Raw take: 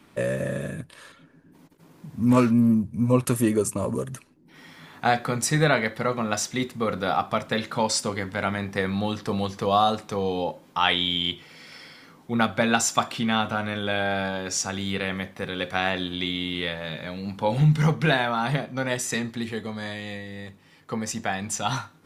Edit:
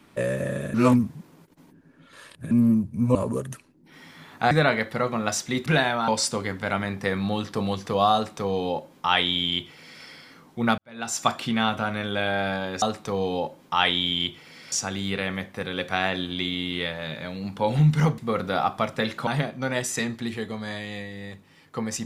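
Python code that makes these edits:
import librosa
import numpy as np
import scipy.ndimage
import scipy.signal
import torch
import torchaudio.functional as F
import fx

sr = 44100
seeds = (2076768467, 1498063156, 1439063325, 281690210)

y = fx.edit(x, sr, fx.reverse_span(start_s=0.74, length_s=1.77),
    fx.cut(start_s=3.15, length_s=0.62),
    fx.cut(start_s=5.13, length_s=0.43),
    fx.swap(start_s=6.71, length_s=1.09, other_s=18.0, other_length_s=0.42),
    fx.duplicate(start_s=9.86, length_s=1.9, to_s=14.54),
    fx.fade_in_span(start_s=12.5, length_s=0.47, curve='qua'), tone=tone)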